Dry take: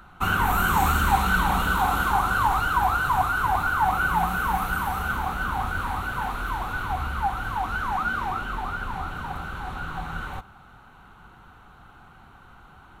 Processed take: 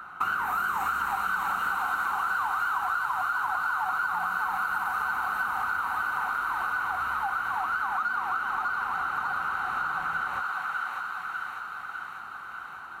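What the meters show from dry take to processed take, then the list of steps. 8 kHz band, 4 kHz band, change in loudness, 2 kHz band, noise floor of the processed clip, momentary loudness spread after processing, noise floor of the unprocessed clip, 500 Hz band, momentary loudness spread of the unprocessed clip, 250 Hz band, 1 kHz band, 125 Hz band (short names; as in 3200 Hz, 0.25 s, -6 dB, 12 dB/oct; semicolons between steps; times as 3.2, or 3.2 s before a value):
n/a, -8.5 dB, -3.5 dB, -1.0 dB, -41 dBFS, 8 LU, -50 dBFS, -10.5 dB, 12 LU, -17.0 dB, -3.5 dB, -22.5 dB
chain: bell 1300 Hz +11.5 dB 0.93 oct; in parallel at -10.5 dB: soft clip -18 dBFS, distortion -9 dB; on the sum: HPF 370 Hz 6 dB/oct; notch 3400 Hz, Q 8.8; on a send: thinning echo 0.597 s, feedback 69%, high-pass 890 Hz, level -3.5 dB; on the sum: compressor 6:1, threshold -24 dBFS, peak gain reduction 15 dB; gain -2.5 dB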